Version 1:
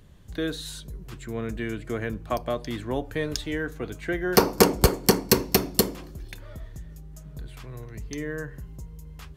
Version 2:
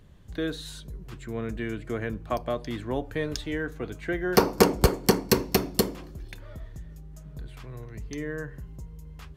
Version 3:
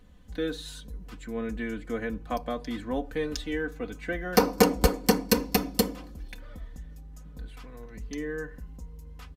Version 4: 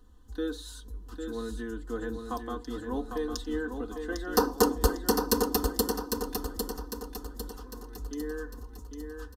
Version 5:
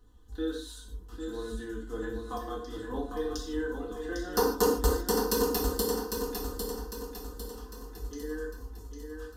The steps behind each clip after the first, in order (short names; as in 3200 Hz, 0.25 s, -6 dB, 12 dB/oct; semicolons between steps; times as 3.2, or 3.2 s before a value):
high shelf 4800 Hz -5.5 dB; gain -1 dB
comb 4 ms, depth 80%; gain -3 dB
fixed phaser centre 610 Hz, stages 6; on a send: feedback echo 0.802 s, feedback 45%, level -6 dB
non-linear reverb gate 0.18 s falling, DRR -1.5 dB; gain -5 dB